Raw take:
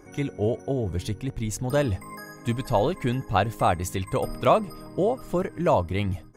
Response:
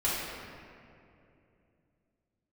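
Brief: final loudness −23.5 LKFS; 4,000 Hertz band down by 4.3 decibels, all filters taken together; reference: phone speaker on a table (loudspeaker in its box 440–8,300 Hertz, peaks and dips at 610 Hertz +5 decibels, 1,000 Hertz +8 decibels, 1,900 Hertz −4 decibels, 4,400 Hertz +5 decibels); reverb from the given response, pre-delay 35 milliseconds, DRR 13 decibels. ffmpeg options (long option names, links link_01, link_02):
-filter_complex "[0:a]equalizer=frequency=4000:width_type=o:gain=-7,asplit=2[link_01][link_02];[1:a]atrim=start_sample=2205,adelay=35[link_03];[link_02][link_03]afir=irnorm=-1:irlink=0,volume=-23dB[link_04];[link_01][link_04]amix=inputs=2:normalize=0,highpass=frequency=440:width=0.5412,highpass=frequency=440:width=1.3066,equalizer=frequency=610:width_type=q:width=4:gain=5,equalizer=frequency=1000:width_type=q:width=4:gain=8,equalizer=frequency=1900:width_type=q:width=4:gain=-4,equalizer=frequency=4400:width_type=q:width=4:gain=5,lowpass=frequency=8300:width=0.5412,lowpass=frequency=8300:width=1.3066,volume=0.5dB"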